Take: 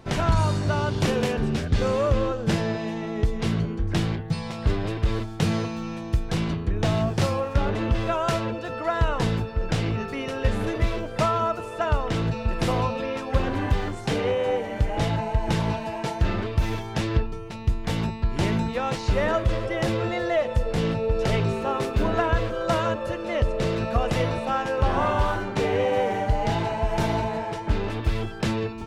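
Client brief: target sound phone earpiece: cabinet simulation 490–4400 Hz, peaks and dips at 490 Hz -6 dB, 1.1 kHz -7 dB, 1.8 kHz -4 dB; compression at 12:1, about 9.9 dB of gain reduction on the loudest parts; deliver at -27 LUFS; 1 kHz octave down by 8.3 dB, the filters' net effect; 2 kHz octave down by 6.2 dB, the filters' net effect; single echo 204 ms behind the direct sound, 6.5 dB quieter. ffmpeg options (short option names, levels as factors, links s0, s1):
-af "equalizer=f=1000:t=o:g=-6.5,equalizer=f=2000:t=o:g=-3,acompressor=threshold=0.0501:ratio=12,highpass=490,equalizer=f=490:t=q:w=4:g=-6,equalizer=f=1100:t=q:w=4:g=-7,equalizer=f=1800:t=q:w=4:g=-4,lowpass=f=4400:w=0.5412,lowpass=f=4400:w=1.3066,aecho=1:1:204:0.473,volume=3.76"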